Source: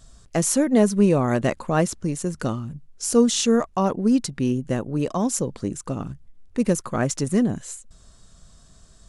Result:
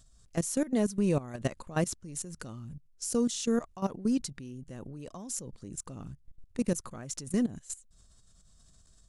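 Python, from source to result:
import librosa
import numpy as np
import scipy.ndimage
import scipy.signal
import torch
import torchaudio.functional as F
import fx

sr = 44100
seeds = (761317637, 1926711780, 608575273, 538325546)

y = fx.low_shelf(x, sr, hz=180.0, db=7.0)
y = fx.level_steps(y, sr, step_db=17)
y = fx.high_shelf(y, sr, hz=3100.0, db=8.5)
y = y * 10.0 ** (-8.5 / 20.0)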